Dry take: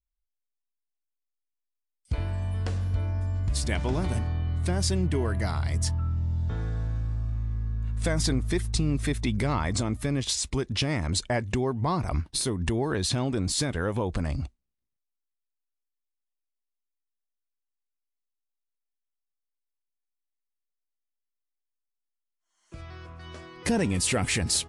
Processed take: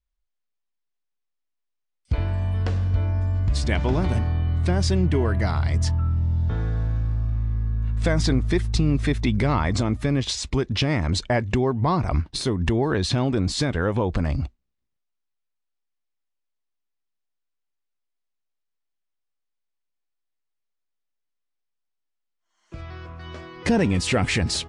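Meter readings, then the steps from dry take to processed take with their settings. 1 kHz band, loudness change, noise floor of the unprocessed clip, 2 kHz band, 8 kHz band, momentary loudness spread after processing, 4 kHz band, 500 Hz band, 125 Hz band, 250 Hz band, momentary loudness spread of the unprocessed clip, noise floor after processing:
+5.0 dB, +4.5 dB, -84 dBFS, +4.5 dB, -3.5 dB, 5 LU, +2.5 dB, +5.5 dB, +5.5 dB, +5.5 dB, 6 LU, -79 dBFS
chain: air absorption 97 m; gain +5.5 dB

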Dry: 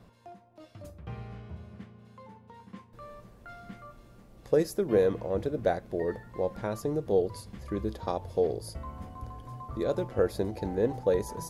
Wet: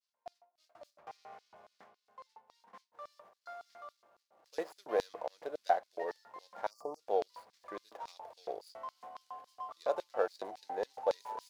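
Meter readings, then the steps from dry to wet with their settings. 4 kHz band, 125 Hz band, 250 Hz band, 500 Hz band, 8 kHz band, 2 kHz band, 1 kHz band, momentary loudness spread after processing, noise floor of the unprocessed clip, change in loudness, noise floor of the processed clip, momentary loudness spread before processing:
-5.0 dB, under -30 dB, -19.5 dB, -9.0 dB, under -10 dB, -4.0 dB, +0.5 dB, 20 LU, -56 dBFS, -9.0 dB, -85 dBFS, 21 LU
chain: median filter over 15 samples; tilt shelf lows -3.5 dB, about 1400 Hz; expander -52 dBFS; spectral gain 6.7–7, 1300–4400 Hz -30 dB; high shelf 2300 Hz -9 dB; LFO high-pass square 3.6 Hz 740–4600 Hz

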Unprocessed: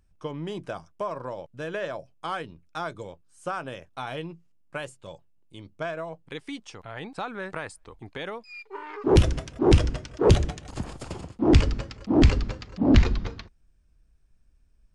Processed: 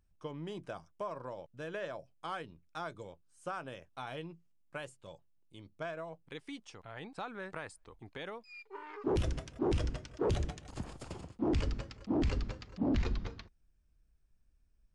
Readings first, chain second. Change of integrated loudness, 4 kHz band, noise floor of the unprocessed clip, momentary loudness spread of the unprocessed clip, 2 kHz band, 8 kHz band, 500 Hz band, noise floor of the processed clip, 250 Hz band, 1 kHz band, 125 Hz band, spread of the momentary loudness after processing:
-12.5 dB, -12.5 dB, -62 dBFS, 19 LU, -10.0 dB, -12.0 dB, -11.0 dB, -70 dBFS, -11.5 dB, -9.5 dB, -13.5 dB, 15 LU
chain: limiter -15 dBFS, peak gain reduction 9 dB; gain -8.5 dB

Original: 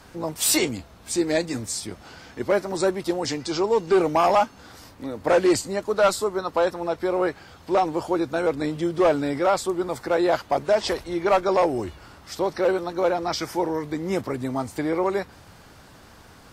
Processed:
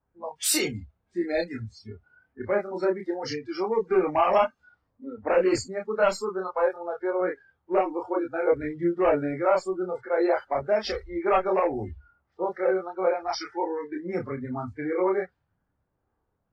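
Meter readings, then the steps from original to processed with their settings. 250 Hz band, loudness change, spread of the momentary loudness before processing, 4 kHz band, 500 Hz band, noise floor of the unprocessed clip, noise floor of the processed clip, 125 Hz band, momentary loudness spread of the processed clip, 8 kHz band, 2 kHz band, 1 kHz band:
-4.5 dB, -3.0 dB, 10 LU, -5.5 dB, -2.5 dB, -49 dBFS, -77 dBFS, -5.0 dB, 12 LU, -5.0 dB, -3.0 dB, -3.5 dB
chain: low-pass opened by the level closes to 1100 Hz, open at -20 dBFS; spectral noise reduction 26 dB; chorus voices 6, 0.47 Hz, delay 28 ms, depth 1.3 ms

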